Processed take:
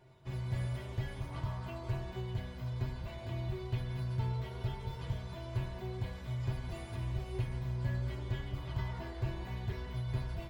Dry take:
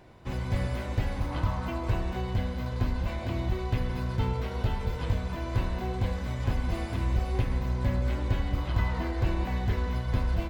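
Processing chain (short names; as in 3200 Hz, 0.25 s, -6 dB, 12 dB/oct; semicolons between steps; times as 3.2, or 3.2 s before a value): resonator 130 Hz, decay 0.16 s, harmonics odd, mix 90%; gain +1 dB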